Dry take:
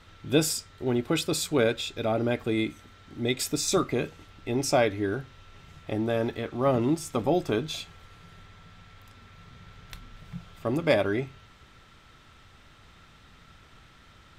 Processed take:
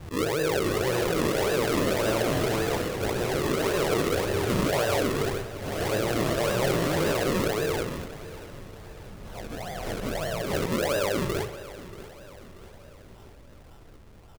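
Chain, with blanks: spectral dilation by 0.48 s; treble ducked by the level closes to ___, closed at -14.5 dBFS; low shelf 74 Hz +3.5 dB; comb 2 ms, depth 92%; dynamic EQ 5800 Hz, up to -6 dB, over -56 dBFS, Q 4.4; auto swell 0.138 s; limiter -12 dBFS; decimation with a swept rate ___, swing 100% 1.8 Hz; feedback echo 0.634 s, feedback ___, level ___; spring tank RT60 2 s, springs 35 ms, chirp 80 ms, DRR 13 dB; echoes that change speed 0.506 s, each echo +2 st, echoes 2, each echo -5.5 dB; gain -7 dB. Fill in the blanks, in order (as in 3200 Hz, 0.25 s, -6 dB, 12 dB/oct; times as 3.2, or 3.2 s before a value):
1600 Hz, 40×, 50%, -16 dB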